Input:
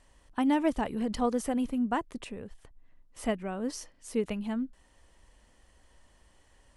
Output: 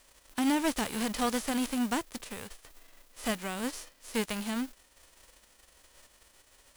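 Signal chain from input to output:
spectral envelope flattened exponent 0.3
gain into a clipping stage and back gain 19.5 dB
level −1 dB

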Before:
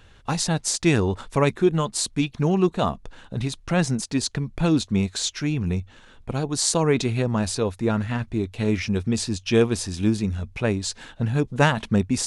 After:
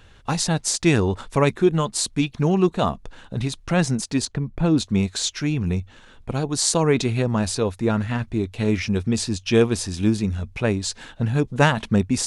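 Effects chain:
0:04.25–0:04.78: high-shelf EQ 2,200 Hz −11.5 dB
level +1.5 dB

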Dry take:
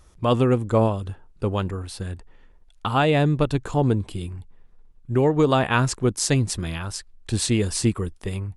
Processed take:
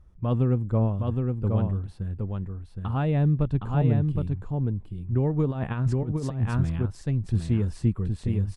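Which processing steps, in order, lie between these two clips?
single-tap delay 766 ms −4 dB
0:05.51–0:06.86: compressor whose output falls as the input rises −21 dBFS, ratio −0.5
drawn EQ curve 180 Hz 0 dB, 330 Hz −9 dB, 1,800 Hz −14 dB, 6,600 Hz −25 dB

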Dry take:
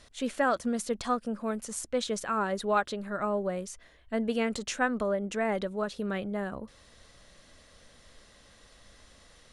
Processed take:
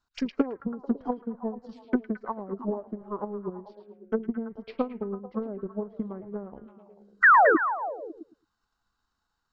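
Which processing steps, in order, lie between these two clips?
treble cut that deepens with the level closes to 630 Hz, closed at −26 dBFS
noise gate −45 dBFS, range −15 dB
low-shelf EQ 260 Hz −7.5 dB
transient designer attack +12 dB, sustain −5 dB
phaser swept by the level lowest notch 560 Hz, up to 3,500 Hz, full sweep at −31 dBFS
sound drawn into the spectrogram fall, 0:07.23–0:07.56, 370–2,000 Hz −11 dBFS
formants moved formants −5 semitones
high-frequency loss of the air 72 metres
echo through a band-pass that steps 110 ms, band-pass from 3,000 Hz, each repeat −0.7 octaves, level −4 dB
level −2.5 dB

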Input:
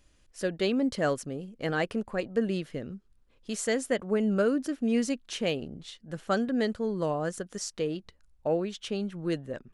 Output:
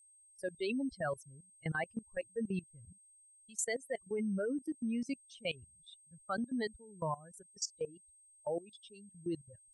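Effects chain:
spectral dynamics exaggerated over time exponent 3
output level in coarse steps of 20 dB
steady tone 8,400 Hz −67 dBFS
level +5.5 dB

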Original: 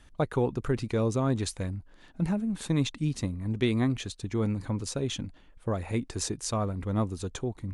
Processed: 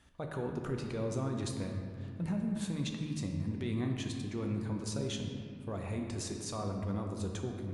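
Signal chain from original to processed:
high-pass filter 43 Hz
brickwall limiter −24 dBFS, peak gain reduction 11 dB
convolution reverb RT60 2.3 s, pre-delay 4 ms, DRR 2 dB
level −6 dB

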